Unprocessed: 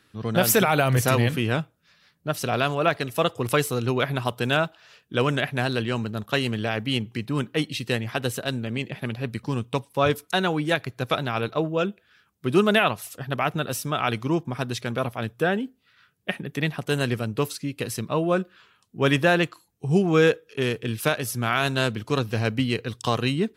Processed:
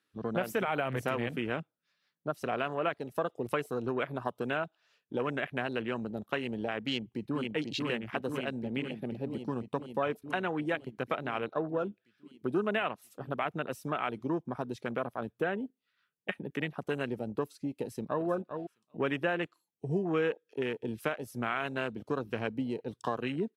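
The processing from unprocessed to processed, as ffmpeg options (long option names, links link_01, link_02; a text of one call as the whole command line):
ffmpeg -i in.wav -filter_complex "[0:a]asplit=2[link_01][link_02];[link_02]afade=type=in:start_time=6.84:duration=0.01,afade=type=out:start_time=7.41:duration=0.01,aecho=0:1:490|980|1470|1960|2450|2940|3430|3920|4410|4900|5390|5880:0.749894|0.599915|0.479932|0.383946|0.307157|0.245725|0.19658|0.157264|0.125811|0.100649|0.0805193|0.0644154[link_03];[link_01][link_03]amix=inputs=2:normalize=0,asplit=2[link_04][link_05];[link_05]afade=type=in:start_time=17.79:duration=0.01,afade=type=out:start_time=18.27:duration=0.01,aecho=0:1:390|780:0.298538|0.0447807[link_06];[link_04][link_06]amix=inputs=2:normalize=0,highpass=210,acompressor=threshold=-29dB:ratio=2.5,afwtdn=0.0178,volume=-1.5dB" out.wav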